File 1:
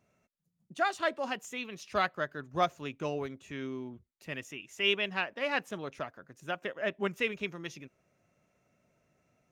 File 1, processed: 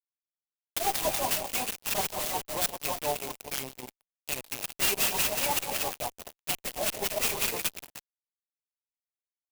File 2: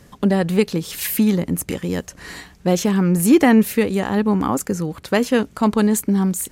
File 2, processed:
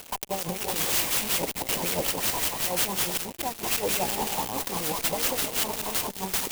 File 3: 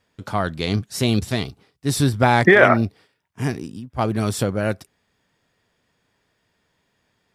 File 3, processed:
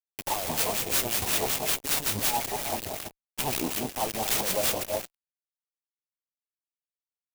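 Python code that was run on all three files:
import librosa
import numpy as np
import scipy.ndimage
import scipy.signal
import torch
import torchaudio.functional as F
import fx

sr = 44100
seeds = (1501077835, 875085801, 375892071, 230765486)

y = fx.over_compress(x, sr, threshold_db=-27.0, ratio=-1.0)
y = fx.low_shelf(y, sr, hz=67.0, db=6.5)
y = fx.rev_gated(y, sr, seeds[0], gate_ms=350, shape='rising', drr_db=7.5)
y = fx.filter_lfo_bandpass(y, sr, shape='sine', hz=5.4, low_hz=950.0, high_hz=3800.0, q=4.0)
y = fx.peak_eq(y, sr, hz=190.0, db=-4.0, octaves=2.8)
y = fx.fuzz(y, sr, gain_db=53.0, gate_db=-55.0)
y = scipy.signal.sosfilt(scipy.signal.cheby1(2, 1.0, [790.0, 2800.0], 'bandstop', fs=sr, output='sos'), y)
y = fx.clock_jitter(y, sr, seeds[1], jitter_ms=0.08)
y = y * librosa.db_to_amplitude(-8.0)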